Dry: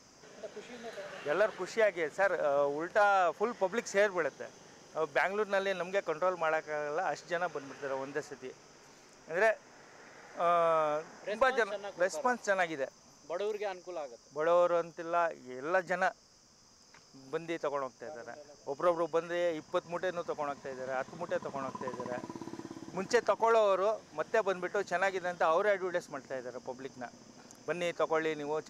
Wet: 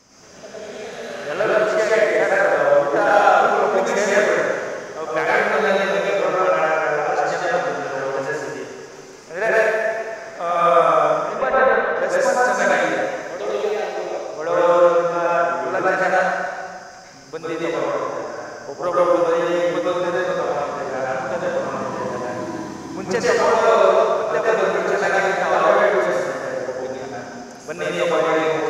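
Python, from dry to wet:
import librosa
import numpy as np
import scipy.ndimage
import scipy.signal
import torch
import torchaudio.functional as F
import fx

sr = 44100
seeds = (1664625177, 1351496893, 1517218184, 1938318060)

y = fx.lowpass(x, sr, hz=2100.0, slope=12, at=(11.22, 11.96))
y = fx.rev_plate(y, sr, seeds[0], rt60_s=1.9, hf_ratio=0.9, predelay_ms=85, drr_db=-8.5)
y = y * 10.0 ** (5.0 / 20.0)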